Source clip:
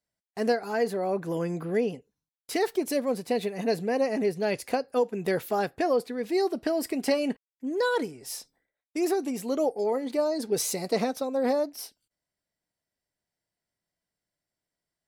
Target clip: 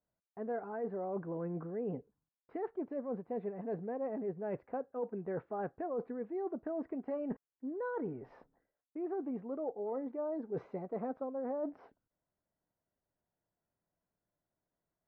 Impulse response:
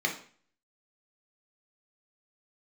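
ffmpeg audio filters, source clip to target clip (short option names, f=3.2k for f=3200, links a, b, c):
-af "lowpass=f=1.4k:w=0.5412,lowpass=f=1.4k:w=1.3066,areverse,acompressor=threshold=-38dB:ratio=6,areverse,volume=1.5dB"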